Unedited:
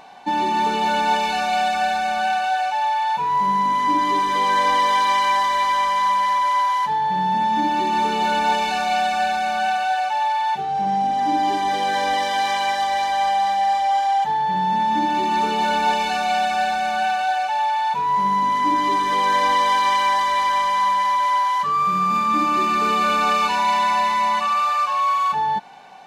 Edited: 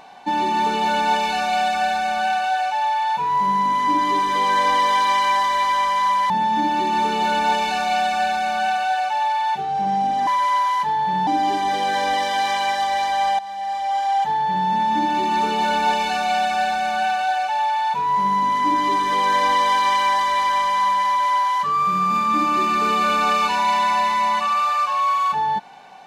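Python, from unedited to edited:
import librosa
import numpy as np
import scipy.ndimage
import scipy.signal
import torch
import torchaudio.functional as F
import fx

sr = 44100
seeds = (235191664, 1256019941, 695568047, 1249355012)

y = fx.edit(x, sr, fx.move(start_s=6.3, length_s=1.0, to_s=11.27),
    fx.fade_in_from(start_s=13.39, length_s=0.82, floor_db=-15.5), tone=tone)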